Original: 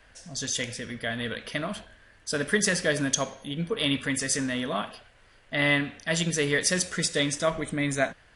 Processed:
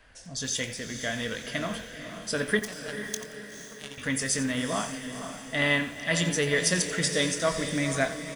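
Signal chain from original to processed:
0:02.59–0:03.98: power curve on the samples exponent 3
double-tracking delay 23 ms −12 dB
feedback delay with all-pass diffusion 492 ms, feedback 49%, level −8.5 dB
feedback echo at a low word length 88 ms, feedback 35%, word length 7 bits, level −13.5 dB
level −1 dB

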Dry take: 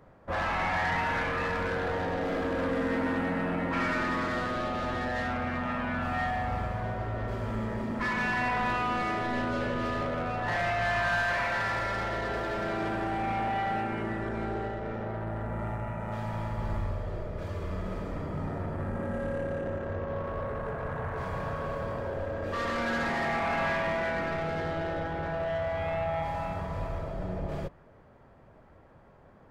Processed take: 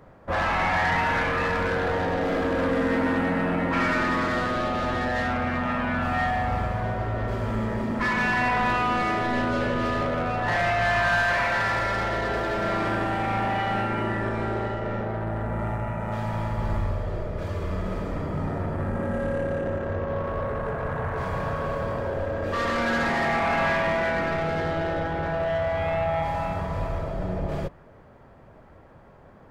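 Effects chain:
0:12.59–0:15.01: flutter between parallel walls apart 8 metres, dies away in 0.49 s
level +5.5 dB

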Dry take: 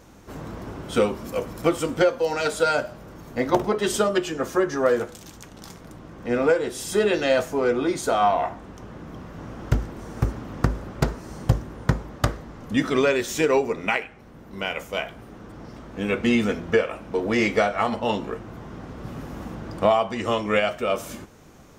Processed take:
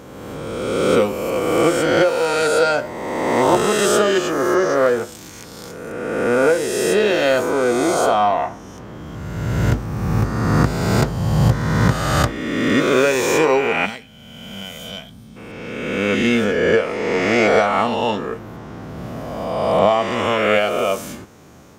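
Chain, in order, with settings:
peak hold with a rise ahead of every peak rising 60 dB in 1.88 s
high-pass filter 67 Hz
gain on a spectral selection 0:13.86–0:15.36, 260–3,000 Hz −14 dB
level +1.5 dB

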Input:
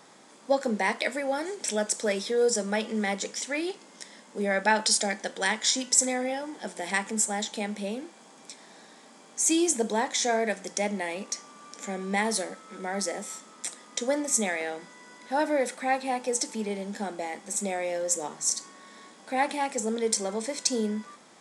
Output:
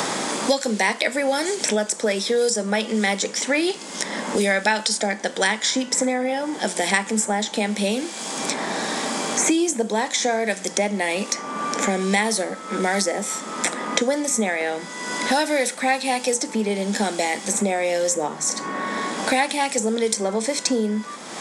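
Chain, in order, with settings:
multiband upward and downward compressor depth 100%
level +6 dB

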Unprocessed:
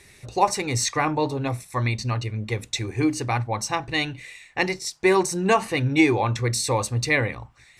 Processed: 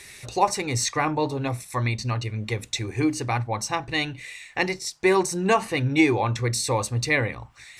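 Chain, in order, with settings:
one half of a high-frequency compander encoder only
level −1 dB

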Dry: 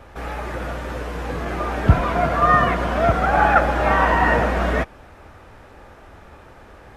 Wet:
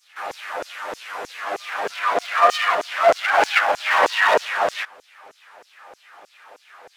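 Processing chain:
lower of the sound and its delayed copy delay 9.9 ms
auto-filter high-pass saw down 3.2 Hz 440–6,600 Hz

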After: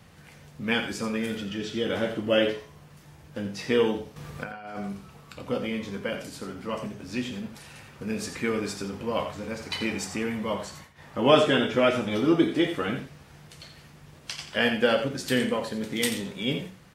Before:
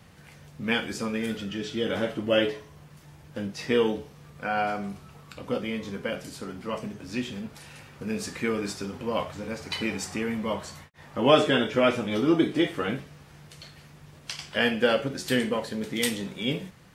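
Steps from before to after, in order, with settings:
0:04.16–0:04.78: compressor whose output falls as the input rises −38 dBFS, ratio −1
on a send: single-tap delay 86 ms −10 dB

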